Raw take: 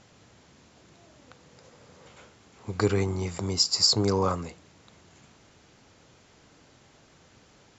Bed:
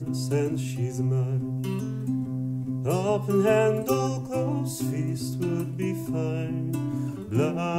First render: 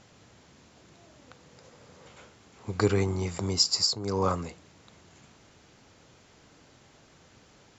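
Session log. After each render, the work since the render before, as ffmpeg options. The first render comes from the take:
-filter_complex "[0:a]asplit=3[s0][s1][s2];[s0]atrim=end=3.99,asetpts=PTS-STARTPTS,afade=t=out:st=3.72:d=0.27:silence=0.223872[s3];[s1]atrim=start=3.99:end=4,asetpts=PTS-STARTPTS,volume=0.224[s4];[s2]atrim=start=4,asetpts=PTS-STARTPTS,afade=t=in:d=0.27:silence=0.223872[s5];[s3][s4][s5]concat=n=3:v=0:a=1"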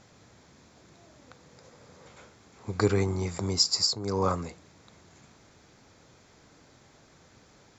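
-af "equalizer=f=2900:t=o:w=0.23:g=-7.5"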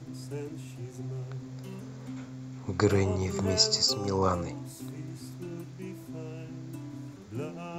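-filter_complex "[1:a]volume=0.237[s0];[0:a][s0]amix=inputs=2:normalize=0"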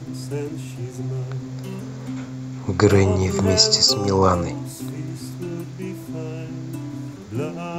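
-af "volume=3.16,alimiter=limit=0.708:level=0:latency=1"

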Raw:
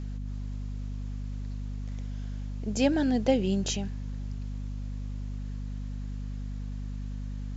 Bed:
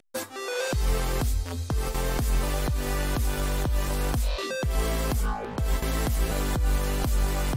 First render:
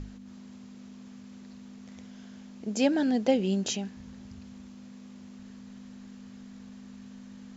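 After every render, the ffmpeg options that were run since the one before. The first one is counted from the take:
-af "bandreject=f=50:t=h:w=6,bandreject=f=100:t=h:w=6,bandreject=f=150:t=h:w=6"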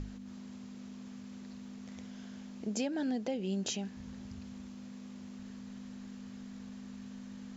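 -af "alimiter=limit=0.0891:level=0:latency=1:release=431,acompressor=threshold=0.0126:ratio=1.5"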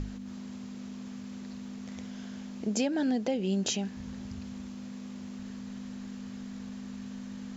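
-af "volume=1.88"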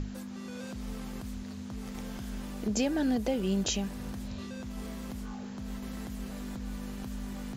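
-filter_complex "[1:a]volume=0.141[s0];[0:a][s0]amix=inputs=2:normalize=0"

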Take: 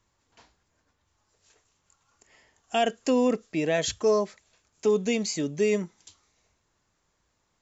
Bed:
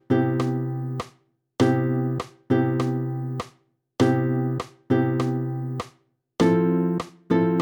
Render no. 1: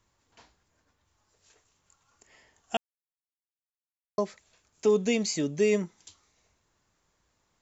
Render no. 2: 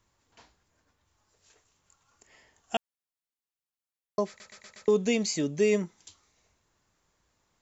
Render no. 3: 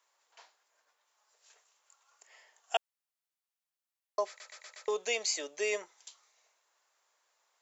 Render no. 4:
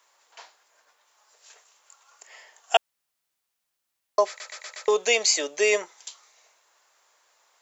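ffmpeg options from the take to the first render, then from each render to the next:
-filter_complex "[0:a]asplit=3[s0][s1][s2];[s0]atrim=end=2.77,asetpts=PTS-STARTPTS,afade=t=out:st=2.766:d=0.004:c=hsin[s3];[s1]atrim=start=2.77:end=4.18,asetpts=PTS-STARTPTS,volume=0[s4];[s2]atrim=start=4.18,asetpts=PTS-STARTPTS,afade=t=in:d=0.004:c=hsin[s5];[s3][s4][s5]concat=n=3:v=0:a=1"
-filter_complex "[0:a]asplit=6[s0][s1][s2][s3][s4][s5];[s0]atrim=end=4.402[s6];[s1]atrim=start=4.278:end=4.402[s7];[s2]atrim=start=4.278:end=4.402[s8];[s3]atrim=start=4.278:end=4.402[s9];[s4]atrim=start=4.278:end=4.402[s10];[s5]atrim=start=4.878[s11];[s6][s7]acrossfade=d=0.004:c1=hsin:c2=hsin[s12];[s12][s8]acrossfade=d=0.004:c1=hsin:c2=hsin[s13];[s13][s9]acrossfade=d=0.004:c1=hsin:c2=hsin[s14];[s14][s10]acrossfade=d=0.004:c1=hsin:c2=hsin[s15];[s15][s11]acrossfade=d=0.004:c1=hsin:c2=hsin"
-af "highpass=f=550:w=0.5412,highpass=f=550:w=1.3066"
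-af "volume=3.55"

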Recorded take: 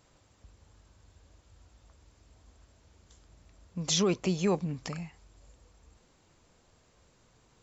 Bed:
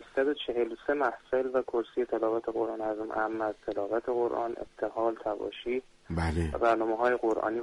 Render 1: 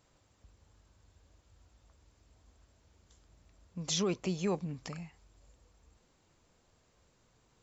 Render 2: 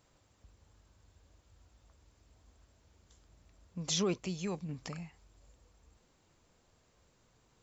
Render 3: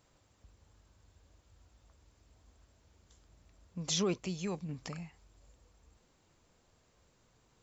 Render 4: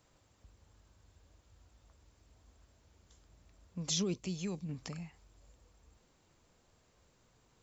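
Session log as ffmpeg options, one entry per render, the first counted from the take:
-af "volume=0.562"
-filter_complex "[0:a]asettb=1/sr,asplit=3[s0][s1][s2];[s0]atrim=end=4.184[s3];[s1]atrim=start=4.18:end=4.69,asetpts=PTS-STARTPTS,afade=t=in:d=0.004:c=qsin,afade=t=out:st=0.506:d=0.004:c=qsin,equalizer=f=550:w=0.37:g=-7[s4];[s2]atrim=start=4.686[s5];[s3][s4]acrossfade=d=0.004:c1=hsin:c2=qsin[s6];[s6][s5]acrossfade=d=0.004:c1=qsin:c2=hsin"
-af anull
-filter_complex "[0:a]acrossover=split=380|3000[s0][s1][s2];[s1]acompressor=threshold=0.00355:ratio=6[s3];[s0][s3][s2]amix=inputs=3:normalize=0"

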